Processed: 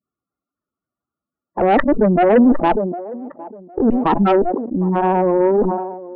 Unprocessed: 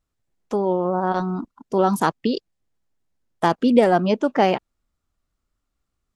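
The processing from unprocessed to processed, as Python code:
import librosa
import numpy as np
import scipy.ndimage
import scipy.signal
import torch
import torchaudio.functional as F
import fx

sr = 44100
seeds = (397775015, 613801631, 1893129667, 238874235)

p1 = x[::-1].copy()
p2 = fx.leveller(p1, sr, passes=2)
p3 = fx.bandpass_edges(p2, sr, low_hz=180.0, high_hz=2500.0)
p4 = fx.spec_gate(p3, sr, threshold_db=-10, keep='strong')
p5 = fx.cheby_harmonics(p4, sr, harmonics=(5, 6), levels_db=(-22, -21), full_scale_db=-1.0)
p6 = fx.dynamic_eq(p5, sr, hz=700.0, q=0.87, threshold_db=-25.0, ratio=4.0, max_db=-3)
p7 = p6 + fx.echo_wet_bandpass(p6, sr, ms=758, feedback_pct=31, hz=490.0, wet_db=-17.0, dry=0)
y = fx.sustainer(p7, sr, db_per_s=49.0)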